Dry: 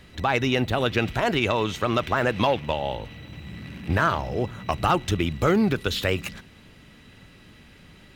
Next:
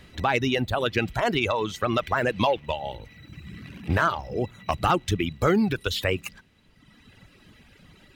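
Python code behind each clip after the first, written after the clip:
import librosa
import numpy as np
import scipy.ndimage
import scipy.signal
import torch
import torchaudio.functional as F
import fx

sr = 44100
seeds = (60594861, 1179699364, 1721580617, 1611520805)

y = fx.dereverb_blind(x, sr, rt60_s=1.4)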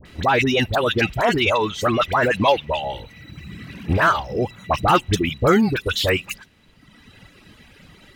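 y = fx.low_shelf(x, sr, hz=340.0, db=-2.5)
y = fx.dispersion(y, sr, late='highs', ms=56.0, hz=1300.0)
y = y * librosa.db_to_amplitude(6.5)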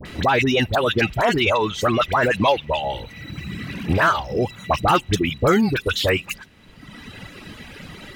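y = fx.band_squash(x, sr, depth_pct=40)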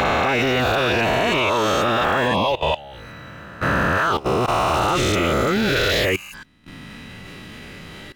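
y = fx.spec_swells(x, sr, rise_s=2.37)
y = fx.level_steps(y, sr, step_db=19)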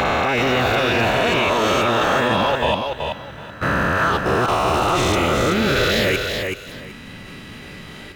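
y = fx.echo_feedback(x, sr, ms=378, feedback_pct=20, wet_db=-5.0)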